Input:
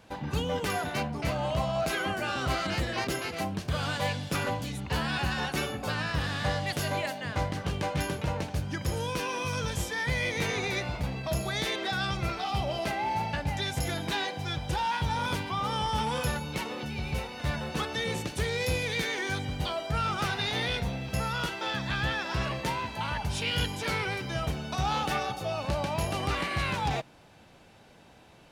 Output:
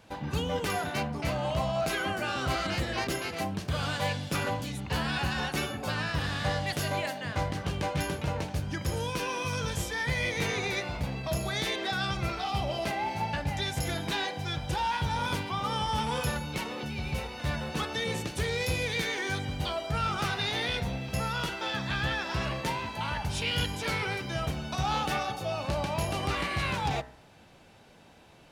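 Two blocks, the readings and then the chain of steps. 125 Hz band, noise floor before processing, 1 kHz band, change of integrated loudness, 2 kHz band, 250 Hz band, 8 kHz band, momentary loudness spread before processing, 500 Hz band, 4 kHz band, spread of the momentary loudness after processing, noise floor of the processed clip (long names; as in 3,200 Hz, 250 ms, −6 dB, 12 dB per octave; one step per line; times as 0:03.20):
−0.5 dB, −55 dBFS, −0.5 dB, −0.5 dB, −0.5 dB, −0.5 dB, 0.0 dB, 4 LU, −0.5 dB, 0.0 dB, 4 LU, −55 dBFS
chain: hum removal 62.7 Hz, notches 33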